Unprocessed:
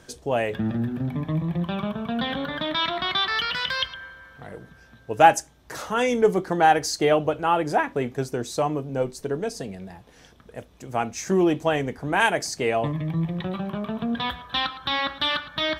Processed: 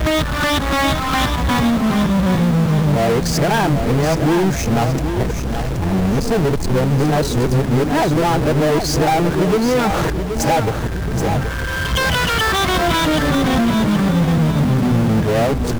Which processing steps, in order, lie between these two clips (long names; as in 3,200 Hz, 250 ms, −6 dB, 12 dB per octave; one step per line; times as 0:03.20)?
played backwards from end to start
noise gate with hold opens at −43 dBFS
spectral tilt −4 dB per octave
downward compressor 6 to 1, threshold −22 dBFS, peak gain reduction 14 dB
power curve on the samples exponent 0.35
bit reduction 7 bits
on a send: repeating echo 776 ms, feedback 39%, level −8 dB
on the sum: level +1.5 dB